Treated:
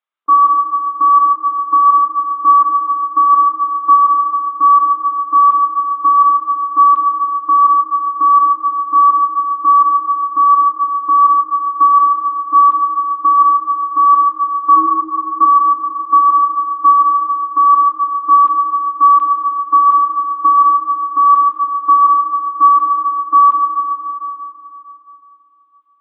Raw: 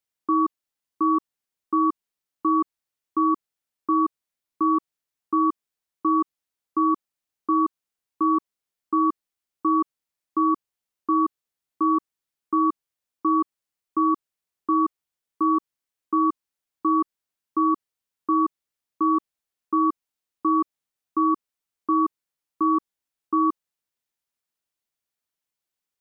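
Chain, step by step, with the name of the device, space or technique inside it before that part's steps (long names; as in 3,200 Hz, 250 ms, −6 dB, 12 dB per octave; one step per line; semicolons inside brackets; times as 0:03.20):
0:14.76–0:15.43: tilt shelving filter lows +3.5 dB, about 1,100 Hz
talking toy (linear-prediction vocoder at 8 kHz pitch kept; high-pass filter 400 Hz 12 dB per octave; parametric band 1,200 Hz +12 dB 0.51 octaves)
comb and all-pass reverb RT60 3.2 s, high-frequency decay 0.95×, pre-delay 15 ms, DRR 1 dB
level +1.5 dB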